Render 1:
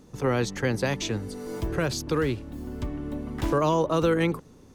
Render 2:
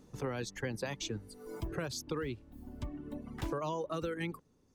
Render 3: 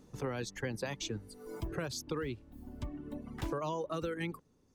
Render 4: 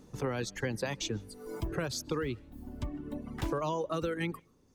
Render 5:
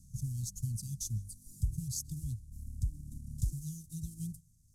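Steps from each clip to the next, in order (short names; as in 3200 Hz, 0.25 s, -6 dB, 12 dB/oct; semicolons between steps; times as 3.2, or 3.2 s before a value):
reverb removal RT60 1.9 s; compressor, threshold -26 dBFS, peak gain reduction 7 dB; gain -6.5 dB
nothing audible
reverb RT60 0.15 s, pre-delay 0.112 s, DRR 27 dB; gain +3.5 dB
CVSD 64 kbps; inverse Chebyshev band-stop 500–2000 Hz, stop band 70 dB; gain +5 dB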